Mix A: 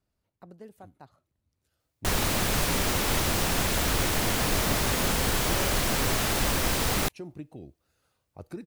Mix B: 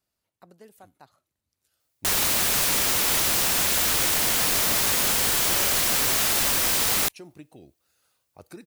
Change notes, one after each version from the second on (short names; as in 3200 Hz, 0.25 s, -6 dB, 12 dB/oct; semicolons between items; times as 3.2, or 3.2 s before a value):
master: add tilt +2.5 dB/oct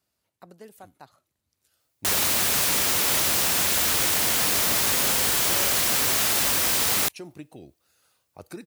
speech +4.0 dB; master: add HPF 51 Hz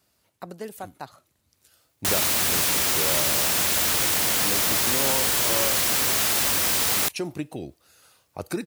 speech +10.0 dB